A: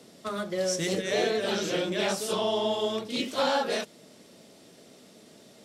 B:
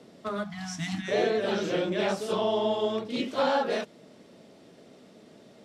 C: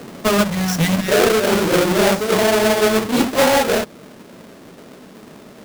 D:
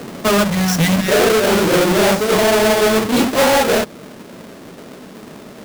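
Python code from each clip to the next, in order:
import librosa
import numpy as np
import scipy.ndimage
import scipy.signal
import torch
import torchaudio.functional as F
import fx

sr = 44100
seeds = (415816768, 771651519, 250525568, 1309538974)

y1 = fx.lowpass(x, sr, hz=2000.0, slope=6)
y1 = fx.spec_erase(y1, sr, start_s=0.43, length_s=0.65, low_hz=320.0, high_hz=640.0)
y1 = y1 * 10.0 ** (1.5 / 20.0)
y2 = fx.halfwave_hold(y1, sr)
y2 = fx.rider(y2, sr, range_db=4, speed_s=0.5)
y2 = y2 * 10.0 ** (8.5 / 20.0)
y3 = 10.0 ** (-14.0 / 20.0) * np.tanh(y2 / 10.0 ** (-14.0 / 20.0))
y3 = y3 * 10.0 ** (4.5 / 20.0)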